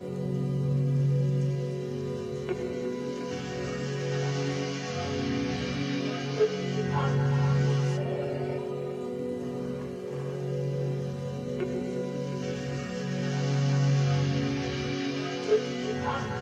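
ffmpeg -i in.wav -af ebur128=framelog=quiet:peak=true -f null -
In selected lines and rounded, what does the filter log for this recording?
Integrated loudness:
  I:         -29.9 LUFS
  Threshold: -39.9 LUFS
Loudness range:
  LRA:         4.8 LU
  Threshold: -50.1 LUFS
  LRA low:   -33.0 LUFS
  LRA high:  -28.1 LUFS
True peak:
  Peak:      -13.5 dBFS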